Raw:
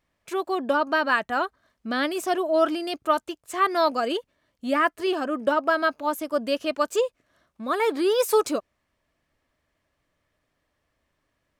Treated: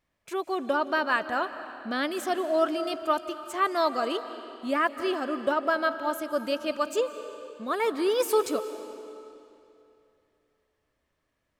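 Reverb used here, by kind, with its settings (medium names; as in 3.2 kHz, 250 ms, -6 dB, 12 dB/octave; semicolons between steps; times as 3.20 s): algorithmic reverb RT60 2.8 s, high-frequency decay 0.9×, pre-delay 120 ms, DRR 11 dB; trim -3.5 dB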